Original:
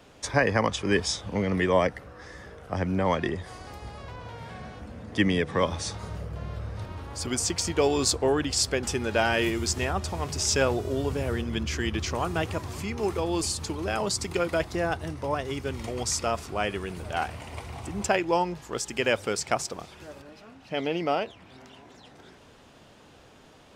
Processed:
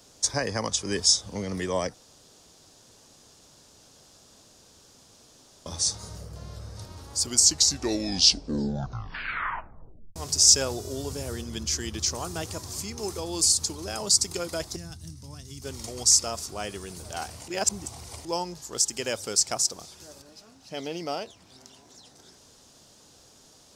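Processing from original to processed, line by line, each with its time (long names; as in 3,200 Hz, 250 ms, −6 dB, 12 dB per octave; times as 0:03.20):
0:01.94–0:05.66: fill with room tone
0:07.25: tape stop 2.91 s
0:14.76–0:15.62: drawn EQ curve 200 Hz 0 dB, 530 Hz −21 dB, 4,300 Hz −6 dB
0:17.48–0:18.25: reverse
whole clip: high shelf with overshoot 3,700 Hz +13.5 dB, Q 1.5; level −5.5 dB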